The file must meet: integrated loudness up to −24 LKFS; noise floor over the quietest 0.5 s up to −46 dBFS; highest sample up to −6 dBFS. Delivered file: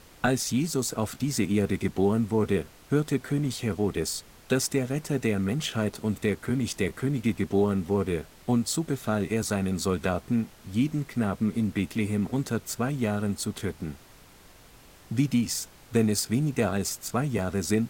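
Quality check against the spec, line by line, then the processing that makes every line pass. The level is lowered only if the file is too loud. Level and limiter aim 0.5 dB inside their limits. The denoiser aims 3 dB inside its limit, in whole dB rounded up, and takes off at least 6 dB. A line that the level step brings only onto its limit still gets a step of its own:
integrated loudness −28.0 LKFS: in spec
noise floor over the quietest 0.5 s −52 dBFS: in spec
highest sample −10.5 dBFS: in spec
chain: no processing needed

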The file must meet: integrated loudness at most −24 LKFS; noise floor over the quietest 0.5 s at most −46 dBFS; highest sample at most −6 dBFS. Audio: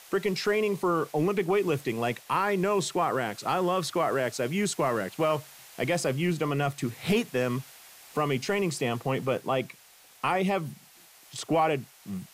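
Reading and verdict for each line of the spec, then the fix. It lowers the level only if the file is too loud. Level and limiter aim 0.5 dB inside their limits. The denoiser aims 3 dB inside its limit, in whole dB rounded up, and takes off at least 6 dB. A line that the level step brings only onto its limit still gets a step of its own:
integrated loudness −28.0 LKFS: in spec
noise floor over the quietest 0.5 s −55 dBFS: in spec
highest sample −13.0 dBFS: in spec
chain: no processing needed

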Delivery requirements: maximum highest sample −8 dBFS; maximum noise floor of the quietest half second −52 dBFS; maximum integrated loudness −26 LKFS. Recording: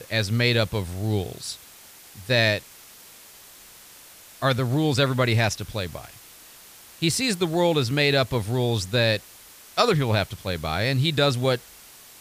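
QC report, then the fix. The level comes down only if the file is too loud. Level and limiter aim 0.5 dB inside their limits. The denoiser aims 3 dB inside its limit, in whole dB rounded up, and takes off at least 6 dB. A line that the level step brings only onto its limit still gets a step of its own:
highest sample −5.5 dBFS: out of spec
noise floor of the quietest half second −48 dBFS: out of spec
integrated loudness −23.5 LKFS: out of spec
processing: broadband denoise 6 dB, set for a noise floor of −48 dBFS
level −3 dB

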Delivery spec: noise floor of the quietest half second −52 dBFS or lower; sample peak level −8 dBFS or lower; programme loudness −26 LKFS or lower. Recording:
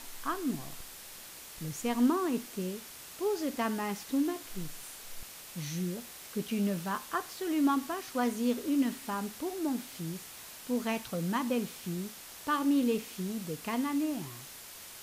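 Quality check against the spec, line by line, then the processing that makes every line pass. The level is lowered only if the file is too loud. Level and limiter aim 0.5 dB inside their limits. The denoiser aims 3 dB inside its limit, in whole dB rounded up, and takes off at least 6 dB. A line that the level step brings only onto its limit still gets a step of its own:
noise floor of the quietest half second −48 dBFS: out of spec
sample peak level −17.0 dBFS: in spec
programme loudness −33.5 LKFS: in spec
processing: broadband denoise 7 dB, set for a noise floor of −48 dBFS

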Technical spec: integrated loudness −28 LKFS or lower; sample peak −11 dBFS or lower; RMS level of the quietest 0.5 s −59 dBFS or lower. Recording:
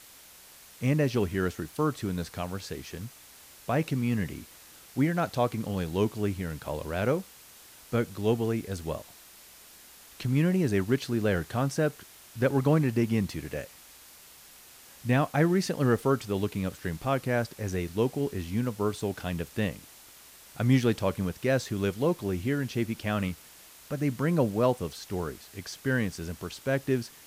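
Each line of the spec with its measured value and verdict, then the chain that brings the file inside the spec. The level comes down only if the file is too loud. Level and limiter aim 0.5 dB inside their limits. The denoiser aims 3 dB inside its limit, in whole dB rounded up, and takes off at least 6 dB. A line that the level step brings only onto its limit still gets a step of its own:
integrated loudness −29.5 LKFS: in spec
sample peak −12.5 dBFS: in spec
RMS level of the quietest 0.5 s −52 dBFS: out of spec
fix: broadband denoise 10 dB, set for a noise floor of −52 dBFS

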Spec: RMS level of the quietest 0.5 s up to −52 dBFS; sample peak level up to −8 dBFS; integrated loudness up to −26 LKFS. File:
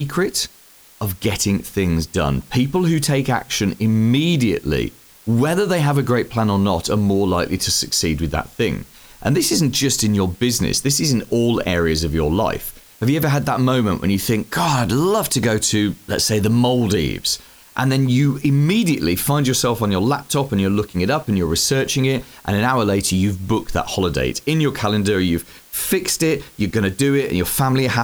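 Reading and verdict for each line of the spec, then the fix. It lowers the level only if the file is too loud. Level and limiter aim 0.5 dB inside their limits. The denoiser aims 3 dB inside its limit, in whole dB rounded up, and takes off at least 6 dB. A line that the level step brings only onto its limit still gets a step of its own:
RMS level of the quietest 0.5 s −47 dBFS: out of spec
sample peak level −4.5 dBFS: out of spec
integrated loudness −18.5 LKFS: out of spec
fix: level −8 dB

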